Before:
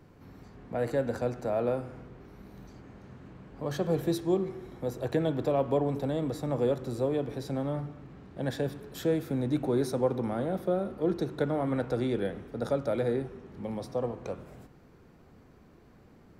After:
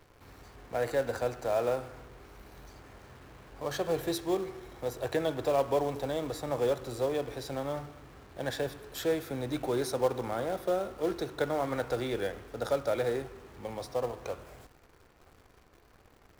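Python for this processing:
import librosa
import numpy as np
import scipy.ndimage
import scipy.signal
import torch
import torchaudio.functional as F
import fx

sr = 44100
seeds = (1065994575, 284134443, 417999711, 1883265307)

p1 = fx.peak_eq(x, sr, hz=190.0, db=-15.0, octaves=1.7)
p2 = fx.quant_companded(p1, sr, bits=4)
y = p1 + (p2 * 10.0 ** (-6.0 / 20.0))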